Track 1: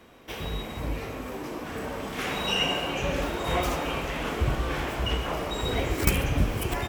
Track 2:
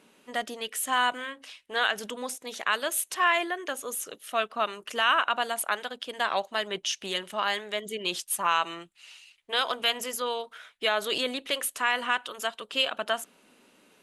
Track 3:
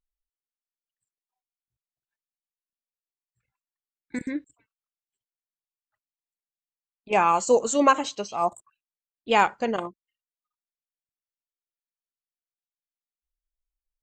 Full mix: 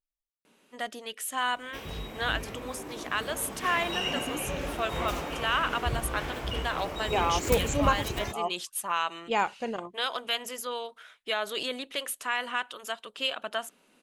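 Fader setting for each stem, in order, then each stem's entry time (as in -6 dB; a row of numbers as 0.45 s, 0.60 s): -5.5 dB, -4.0 dB, -7.0 dB; 1.45 s, 0.45 s, 0.00 s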